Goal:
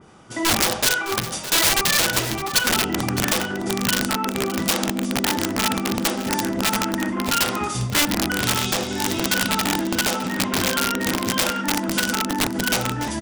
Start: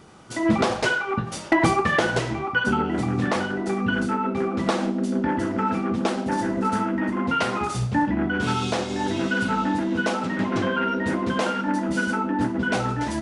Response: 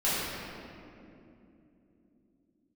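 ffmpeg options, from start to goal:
-filter_complex "[0:a]bandreject=f=4.2k:w=11,aeval=exprs='(mod(6.31*val(0)+1,2)-1)/6.31':c=same,asplit=2[a][b];[b]aecho=0:1:611:0.224[c];[a][c]amix=inputs=2:normalize=0,adynamicequalizer=threshold=0.0126:dfrequency=2600:dqfactor=0.7:tfrequency=2600:tqfactor=0.7:attack=5:release=100:ratio=0.375:range=3.5:mode=boostabove:tftype=highshelf"

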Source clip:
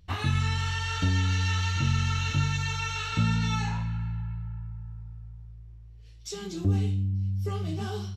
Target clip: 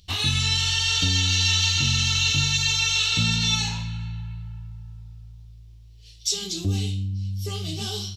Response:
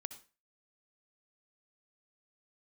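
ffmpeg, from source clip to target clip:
-af "highshelf=f=2.4k:t=q:w=1.5:g=13.5"

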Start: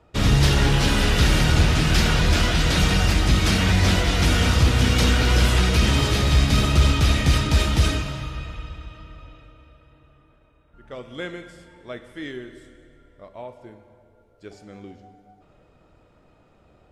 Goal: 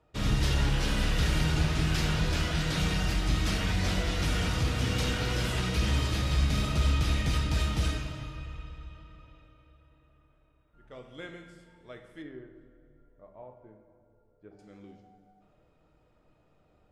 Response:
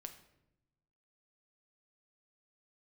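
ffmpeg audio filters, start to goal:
-filter_complex "[0:a]asettb=1/sr,asplit=3[a][b][c];[a]atrim=end=12.224[d];[b]atrim=start=12.22:end=14.59,asetpts=PTS-STARTPTS,afade=t=in:d=0.004:c=qsin,afade=t=out:st=2.366:d=0.004:c=qsin,lowpass=1.3k[e];[c]atrim=start=14.586[f];[d][e]acrossfade=d=0.004:c1=hsin:c2=qsin[g];[g][f]acrossfade=d=0.004:c1=qsin:c2=hsin[h];[1:a]atrim=start_sample=2205[i];[h][i]afir=irnorm=-1:irlink=0,volume=-5dB"

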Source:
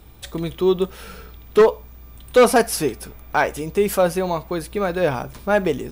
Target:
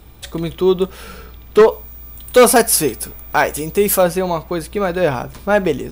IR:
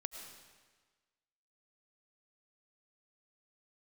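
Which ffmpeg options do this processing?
-filter_complex "[0:a]asettb=1/sr,asplit=3[a][b][c];[a]atrim=end=1.714[d];[b]atrim=start=1.71:end=4.04,asetpts=PTS-STARTPTS,afade=t=in:d=0.004:c=qsin,afade=t=out:st=2.326:d=0.004:c=qsin,highshelf=f=7.5k:g=12[e];[c]atrim=start=4.036[f];[d][e]acrossfade=d=0.004:c1=hsin:c2=qsin[g];[g][f]acrossfade=d=0.004:c1=qsin:c2=hsin,volume=3.5dB"

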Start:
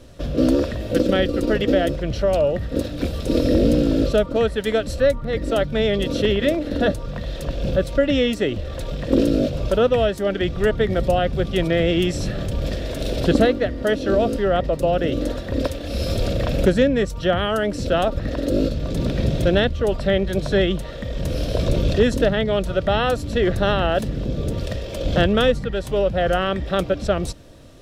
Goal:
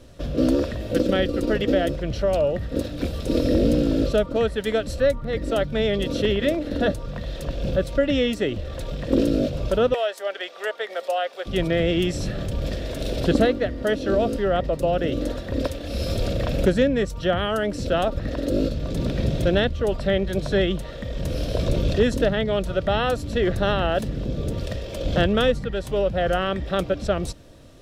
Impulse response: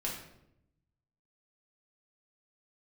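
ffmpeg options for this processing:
-filter_complex "[0:a]asettb=1/sr,asplit=3[a][b][c];[a]atrim=end=9.944[d];[b]atrim=start=9.94:end=11.46,asetpts=PTS-STARTPTS,afade=t=in:d=0.004:c=qsin,afade=t=out:st=1.516:d=0.004:c=qsin,highpass=f=550:w=0.5412,highpass=f=550:w=1.3066[e];[c]atrim=start=11.456[f];[d][e]acrossfade=d=0.004:c1=hsin:c2=qsin[g];[g][f]acrossfade=d=0.004:c1=qsin:c2=hsin,volume=-2.5dB"

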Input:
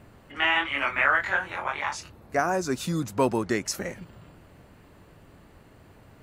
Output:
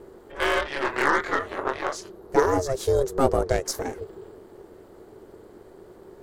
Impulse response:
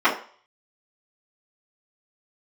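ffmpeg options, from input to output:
-af "aeval=exprs='val(0)*sin(2*PI*270*n/s)':c=same,aeval=exprs='0.335*(cos(1*acos(clip(val(0)/0.335,-1,1)))-cos(1*PI/2))+0.0188*(cos(8*acos(clip(val(0)/0.335,-1,1)))-cos(8*PI/2))':c=same,equalizer=f=160:t=o:w=0.67:g=-7,equalizer=f=400:t=o:w=0.67:g=11,equalizer=f=2.5k:t=o:w=0.67:g=-10,volume=4dB"

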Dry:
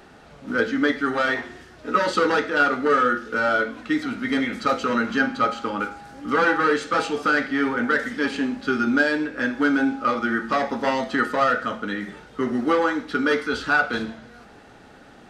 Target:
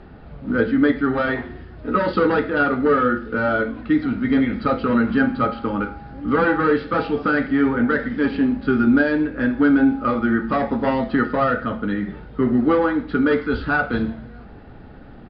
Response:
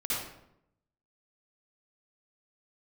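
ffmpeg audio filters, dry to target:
-af "aresample=11025,aresample=44100,aemphasis=mode=reproduction:type=riaa"

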